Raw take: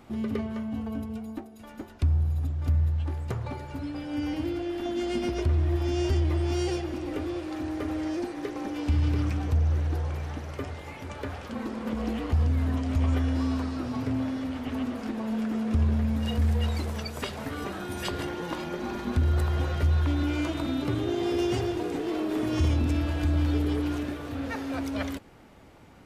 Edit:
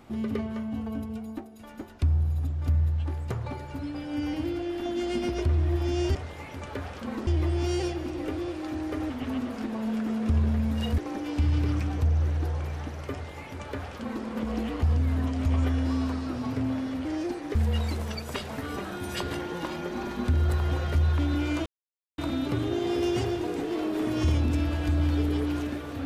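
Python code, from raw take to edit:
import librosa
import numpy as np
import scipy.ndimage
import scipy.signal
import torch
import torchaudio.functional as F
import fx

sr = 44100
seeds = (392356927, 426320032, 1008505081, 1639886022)

y = fx.edit(x, sr, fx.swap(start_s=7.98, length_s=0.5, other_s=14.55, other_length_s=1.88),
    fx.duplicate(start_s=10.63, length_s=1.12, to_s=6.15),
    fx.insert_silence(at_s=20.54, length_s=0.52), tone=tone)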